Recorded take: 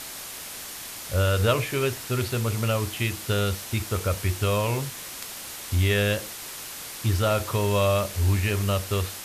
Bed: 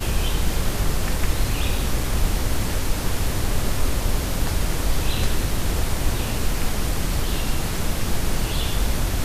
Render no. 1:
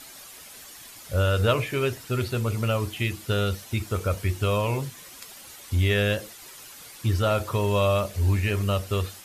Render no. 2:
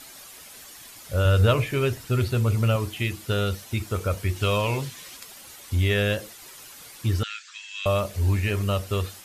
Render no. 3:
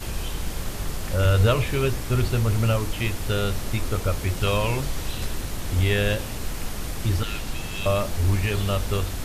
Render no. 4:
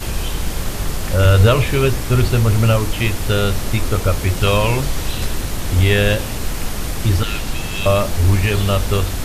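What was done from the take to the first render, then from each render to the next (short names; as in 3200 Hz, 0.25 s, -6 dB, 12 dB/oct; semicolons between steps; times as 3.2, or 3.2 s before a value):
denoiser 10 dB, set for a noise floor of -38 dBFS
1.25–2.76 low shelf 120 Hz +9.5 dB; 4.36–5.17 bell 3500 Hz +5.5 dB 2 oct; 7.23–7.86 Chebyshev band-pass 1600–7400 Hz, order 4
add bed -7.5 dB
gain +7.5 dB; limiter -1 dBFS, peak gain reduction 1.5 dB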